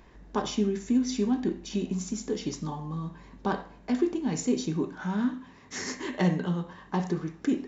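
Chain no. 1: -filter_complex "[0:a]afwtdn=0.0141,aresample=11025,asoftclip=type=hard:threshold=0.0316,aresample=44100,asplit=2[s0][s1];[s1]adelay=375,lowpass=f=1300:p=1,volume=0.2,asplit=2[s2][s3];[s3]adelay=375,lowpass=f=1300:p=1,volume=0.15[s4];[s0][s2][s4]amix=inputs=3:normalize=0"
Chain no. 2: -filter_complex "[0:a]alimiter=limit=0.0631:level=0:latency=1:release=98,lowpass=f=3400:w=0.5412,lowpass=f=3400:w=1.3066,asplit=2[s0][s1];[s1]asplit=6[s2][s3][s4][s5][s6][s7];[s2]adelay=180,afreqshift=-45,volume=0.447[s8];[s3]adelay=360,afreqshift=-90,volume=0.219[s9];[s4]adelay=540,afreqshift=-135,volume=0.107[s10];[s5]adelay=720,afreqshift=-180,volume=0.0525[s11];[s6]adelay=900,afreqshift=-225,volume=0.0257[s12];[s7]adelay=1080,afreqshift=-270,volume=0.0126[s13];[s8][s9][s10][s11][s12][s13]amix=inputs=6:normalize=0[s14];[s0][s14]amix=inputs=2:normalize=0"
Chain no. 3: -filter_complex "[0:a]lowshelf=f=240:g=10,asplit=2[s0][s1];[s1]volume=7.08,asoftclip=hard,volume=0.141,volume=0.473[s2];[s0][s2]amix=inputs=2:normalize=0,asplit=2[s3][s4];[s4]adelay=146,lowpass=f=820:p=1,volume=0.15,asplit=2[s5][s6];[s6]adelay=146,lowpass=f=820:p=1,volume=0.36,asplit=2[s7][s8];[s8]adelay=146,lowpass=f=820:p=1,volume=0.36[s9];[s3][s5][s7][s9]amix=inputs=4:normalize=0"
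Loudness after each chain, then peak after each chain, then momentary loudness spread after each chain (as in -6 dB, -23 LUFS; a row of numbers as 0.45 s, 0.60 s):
-35.5 LUFS, -34.0 LUFS, -22.5 LUFS; -27.5 dBFS, -21.0 dBFS, -7.0 dBFS; 6 LU, 7 LU, 10 LU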